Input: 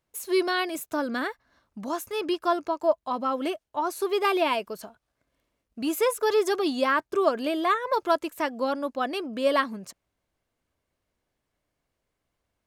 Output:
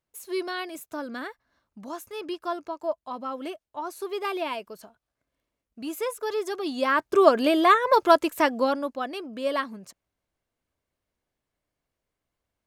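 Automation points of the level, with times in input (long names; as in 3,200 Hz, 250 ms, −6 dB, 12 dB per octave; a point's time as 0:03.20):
0:06.57 −6 dB
0:07.21 +6 dB
0:08.51 +6 dB
0:09.08 −4 dB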